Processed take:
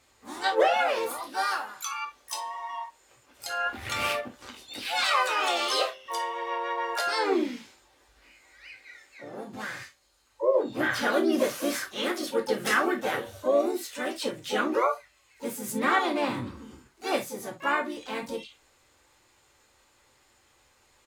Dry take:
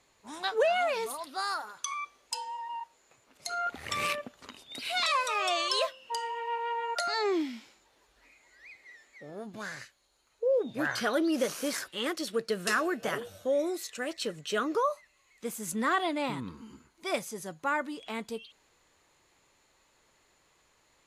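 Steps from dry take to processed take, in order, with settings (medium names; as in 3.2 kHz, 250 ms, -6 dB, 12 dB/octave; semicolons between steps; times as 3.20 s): harmony voices -5 st -11 dB, +3 st -5 dB, +12 st -13 dB; gated-style reverb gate 90 ms falling, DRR 1.5 dB; dynamic bell 6.8 kHz, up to -4 dB, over -47 dBFS, Q 0.85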